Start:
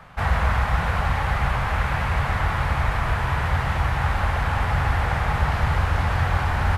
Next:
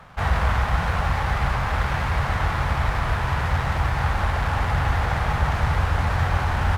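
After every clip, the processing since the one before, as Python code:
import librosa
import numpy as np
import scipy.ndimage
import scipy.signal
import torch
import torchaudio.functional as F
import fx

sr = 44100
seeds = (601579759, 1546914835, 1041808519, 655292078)

y = fx.running_max(x, sr, window=5)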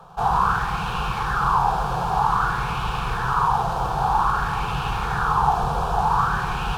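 y = fx.fixed_phaser(x, sr, hz=400.0, stages=8)
y = fx.rev_schroeder(y, sr, rt60_s=3.0, comb_ms=32, drr_db=4.0)
y = fx.bell_lfo(y, sr, hz=0.52, low_hz=600.0, high_hz=2700.0, db=13)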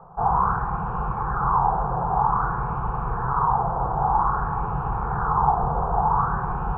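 y = scipy.signal.sosfilt(scipy.signal.butter(4, 1200.0, 'lowpass', fs=sr, output='sos'), x)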